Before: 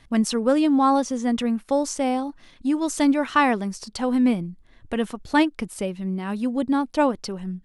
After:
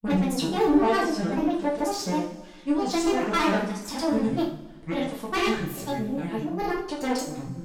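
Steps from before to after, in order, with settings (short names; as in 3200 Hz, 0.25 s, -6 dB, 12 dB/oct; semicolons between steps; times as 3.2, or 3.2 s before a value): grains, pitch spread up and down by 7 st; tube stage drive 20 dB, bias 0.55; two-slope reverb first 0.46 s, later 1.8 s, from -18 dB, DRR -4.5 dB; gain -3 dB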